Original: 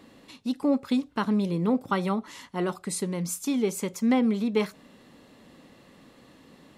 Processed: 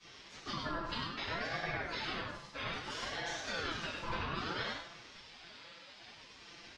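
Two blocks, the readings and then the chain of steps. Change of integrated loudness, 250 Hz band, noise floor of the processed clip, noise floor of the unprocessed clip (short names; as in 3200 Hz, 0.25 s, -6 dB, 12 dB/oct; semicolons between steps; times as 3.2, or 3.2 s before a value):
-11.5 dB, -22.0 dB, -56 dBFS, -56 dBFS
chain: octaver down 2 oct, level +3 dB; HPF 79 Hz 12 dB/oct; spectral gate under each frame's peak -20 dB weak; LPF 5500 Hz 24 dB/oct; comb 5.9 ms, depth 71%; compressor 5:1, threshold -45 dBFS, peak gain reduction 13.5 dB; echo 99 ms -4 dB; shoebox room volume 140 m³, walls mixed, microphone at 3.6 m; ring modulator with a swept carrier 850 Hz, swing 40%, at 0.61 Hz; gain -1 dB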